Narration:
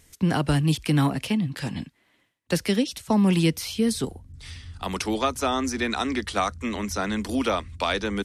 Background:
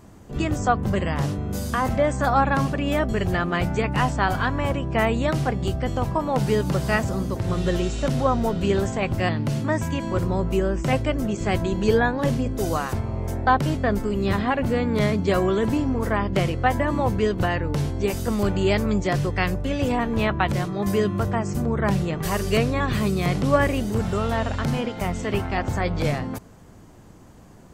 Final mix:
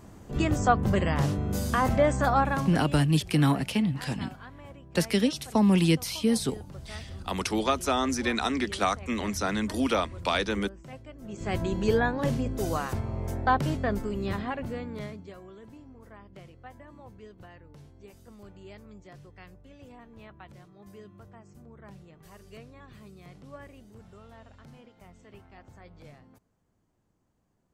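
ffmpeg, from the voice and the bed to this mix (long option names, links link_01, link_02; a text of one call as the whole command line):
ffmpeg -i stem1.wav -i stem2.wav -filter_complex "[0:a]adelay=2450,volume=-1.5dB[link_01];[1:a]volume=16dB,afade=type=out:start_time=2.11:duration=0.9:silence=0.0891251,afade=type=in:start_time=11.2:duration=0.43:silence=0.133352,afade=type=out:start_time=13.69:duration=1.66:silence=0.0841395[link_02];[link_01][link_02]amix=inputs=2:normalize=0" out.wav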